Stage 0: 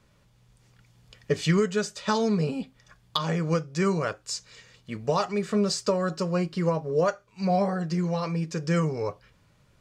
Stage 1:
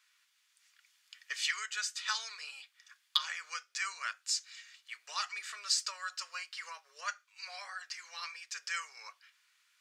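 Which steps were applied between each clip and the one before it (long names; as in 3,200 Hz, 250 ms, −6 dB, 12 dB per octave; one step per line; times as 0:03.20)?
high-pass filter 1,500 Hz 24 dB per octave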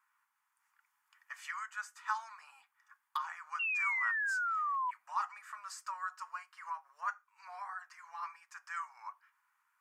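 drawn EQ curve 230 Hz 0 dB, 370 Hz −27 dB, 900 Hz +13 dB, 3,900 Hz −23 dB, 13,000 Hz −3 dB
sound drawn into the spectrogram fall, 0:03.59–0:04.91, 970–2,800 Hz −32 dBFS
level −2 dB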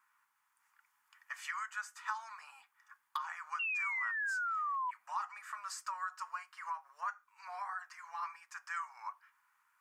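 downward compressor 3 to 1, threshold −39 dBFS, peak gain reduction 8 dB
level +3 dB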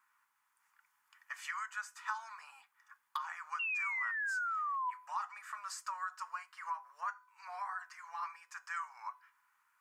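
tuned comb filter 500 Hz, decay 0.6 s, mix 50%
level +5.5 dB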